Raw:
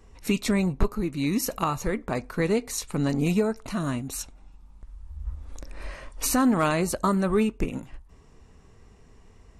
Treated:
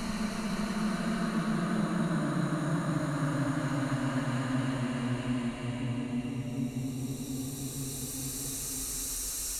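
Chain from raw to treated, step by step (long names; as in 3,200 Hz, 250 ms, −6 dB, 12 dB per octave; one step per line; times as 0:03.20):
harmonic generator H 3 −7 dB, 5 −12 dB, 8 −35 dB, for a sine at −12.5 dBFS
extreme stretch with random phases 20×, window 0.25 s, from 0:03.70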